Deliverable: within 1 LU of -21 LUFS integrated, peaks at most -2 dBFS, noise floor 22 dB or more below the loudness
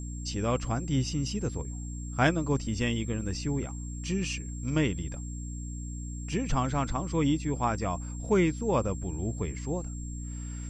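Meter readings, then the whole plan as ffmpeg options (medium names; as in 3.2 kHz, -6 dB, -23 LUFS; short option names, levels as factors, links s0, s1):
hum 60 Hz; highest harmonic 300 Hz; hum level -35 dBFS; steady tone 7.5 kHz; tone level -46 dBFS; loudness -31.0 LUFS; peak level -10.0 dBFS; loudness target -21.0 LUFS
-> -af "bandreject=f=60:t=h:w=4,bandreject=f=120:t=h:w=4,bandreject=f=180:t=h:w=4,bandreject=f=240:t=h:w=4,bandreject=f=300:t=h:w=4"
-af "bandreject=f=7500:w=30"
-af "volume=3.16,alimiter=limit=0.794:level=0:latency=1"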